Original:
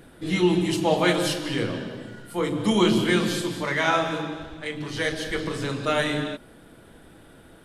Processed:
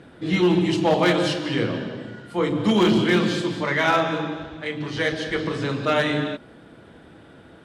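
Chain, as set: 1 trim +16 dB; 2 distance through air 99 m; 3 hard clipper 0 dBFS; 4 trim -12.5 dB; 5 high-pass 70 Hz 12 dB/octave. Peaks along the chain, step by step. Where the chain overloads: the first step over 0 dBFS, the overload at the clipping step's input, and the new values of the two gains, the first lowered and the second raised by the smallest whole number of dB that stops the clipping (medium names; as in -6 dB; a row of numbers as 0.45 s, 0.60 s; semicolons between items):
+8.5 dBFS, +7.5 dBFS, 0.0 dBFS, -12.5 dBFS, -9.0 dBFS; step 1, 7.5 dB; step 1 +8 dB, step 4 -4.5 dB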